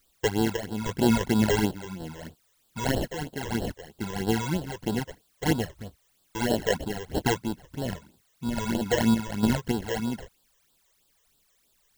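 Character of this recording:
aliases and images of a low sample rate 1,200 Hz, jitter 0%
sample-and-hold tremolo, depth 75%
a quantiser's noise floor 12 bits, dither triangular
phaser sweep stages 12, 3.1 Hz, lowest notch 230–2,200 Hz

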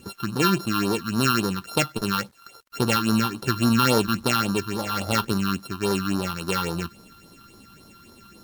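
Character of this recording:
a buzz of ramps at a fixed pitch in blocks of 32 samples
phaser sweep stages 6, 3.6 Hz, lowest notch 540–2,600 Hz
a quantiser's noise floor 10 bits, dither none
Ogg Vorbis

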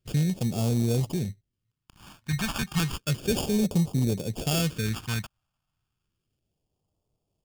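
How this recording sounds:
aliases and images of a low sample rate 2,000 Hz, jitter 0%
phaser sweep stages 2, 0.32 Hz, lowest notch 430–1,600 Hz

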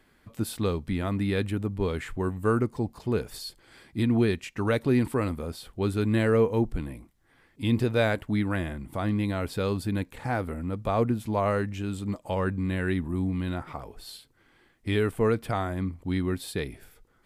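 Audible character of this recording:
background noise floor −64 dBFS
spectral slope −6.5 dB per octave

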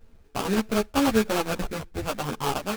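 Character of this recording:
aliases and images of a low sample rate 2,000 Hz, jitter 20%
sample-and-hold tremolo
a shimmering, thickened sound

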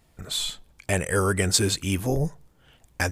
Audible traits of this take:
background noise floor −61 dBFS
spectral slope −3.5 dB per octave

